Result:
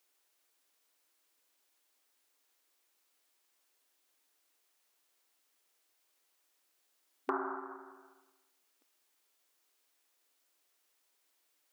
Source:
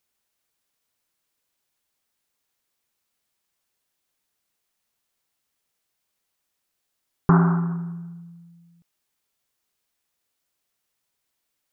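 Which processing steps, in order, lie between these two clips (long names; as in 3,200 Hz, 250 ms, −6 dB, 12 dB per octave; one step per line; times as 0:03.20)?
downward compressor 2.5 to 1, threshold −34 dBFS, peak gain reduction 14 dB
linear-phase brick-wall high-pass 250 Hz
level +2 dB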